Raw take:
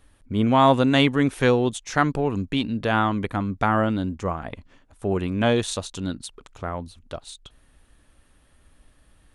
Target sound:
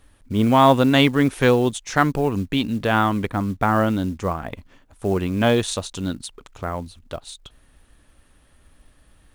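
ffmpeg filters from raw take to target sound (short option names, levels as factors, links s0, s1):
-filter_complex "[0:a]asettb=1/sr,asplit=3[s0][s1][s2];[s0]atrim=end=3.314[s3];[s1]atrim=start=3.31:end=3.76,asetpts=PTS-STARTPTS,afade=t=in:d=0.004:c=qsin,afade=t=out:st=0.446:d=0.004:c=qsin,highshelf=f=3500:g=-11[s4];[s2]atrim=start=3.756[s5];[s3][s4]acrossfade=d=0.004:c1=hsin:c2=qsin[s6];[s6][s5]acrossfade=d=0.004:c1=qsin:c2=hsin,acrusher=bits=7:mode=log:mix=0:aa=0.000001,volume=1.33"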